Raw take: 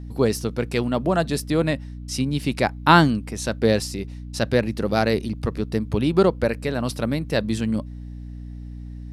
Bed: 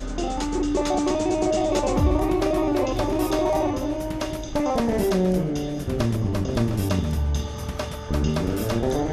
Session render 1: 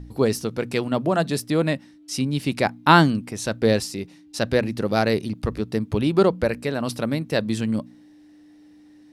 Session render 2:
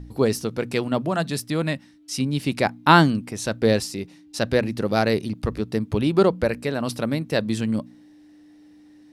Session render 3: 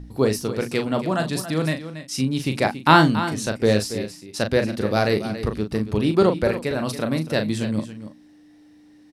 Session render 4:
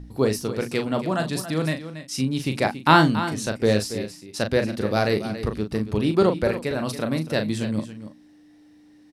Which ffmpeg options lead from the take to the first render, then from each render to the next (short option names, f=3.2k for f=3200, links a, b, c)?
-af "bandreject=f=60:t=h:w=4,bandreject=f=120:t=h:w=4,bandreject=f=180:t=h:w=4,bandreject=f=240:t=h:w=4"
-filter_complex "[0:a]asettb=1/sr,asplit=3[a][b][c];[a]atrim=end=1.024[d];[b]atrim=start=1.02:end=2.2,asetpts=PTS-STARTPTS,afade=t=in:d=0.004:c=qsin,afade=t=out:st=1.176:d=0.004:c=qsin,equalizer=f=450:w=0.78:g=-5[e];[c]atrim=start=2.196[f];[d][e]acrossfade=d=0.004:c1=hsin:c2=qsin[g];[g][f]acrossfade=d=0.004:c1=qsin:c2=hsin"
-filter_complex "[0:a]asplit=2[a][b];[b]adelay=38,volume=-7.5dB[c];[a][c]amix=inputs=2:normalize=0,aecho=1:1:280:0.251"
-af "volume=-1.5dB"